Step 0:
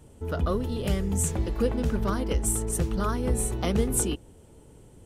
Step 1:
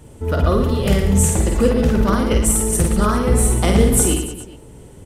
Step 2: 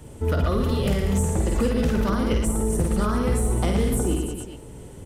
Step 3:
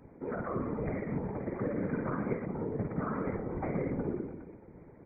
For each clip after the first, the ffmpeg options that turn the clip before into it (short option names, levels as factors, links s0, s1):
-af "equalizer=f=2000:t=o:w=0.33:g=3,aecho=1:1:50|112.5|190.6|288.3|410.4:0.631|0.398|0.251|0.158|0.1,volume=2.66"
-filter_complex "[0:a]acrossover=split=380|1300[s0][s1][s2];[s0]acompressor=threshold=0.1:ratio=4[s3];[s1]acompressor=threshold=0.0316:ratio=4[s4];[s2]acompressor=threshold=0.0178:ratio=4[s5];[s3][s4][s5]amix=inputs=3:normalize=0,volume=5.31,asoftclip=hard,volume=0.188"
-af "afftfilt=real='re*between(b*sr/4096,110,2400)':imag='im*between(b*sr/4096,110,2400)':win_size=4096:overlap=0.75,afftfilt=real='hypot(re,im)*cos(2*PI*random(0))':imag='hypot(re,im)*sin(2*PI*random(1))':win_size=512:overlap=0.75,volume=0.668"